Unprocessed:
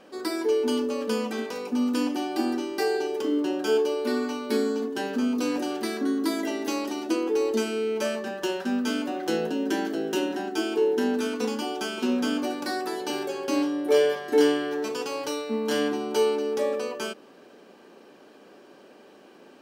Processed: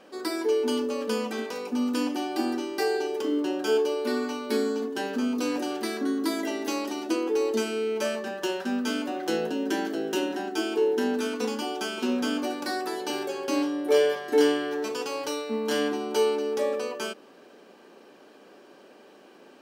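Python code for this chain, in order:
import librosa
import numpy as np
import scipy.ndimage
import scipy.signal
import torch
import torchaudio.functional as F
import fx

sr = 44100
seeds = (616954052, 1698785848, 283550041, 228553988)

y = fx.low_shelf(x, sr, hz=160.0, db=-6.5)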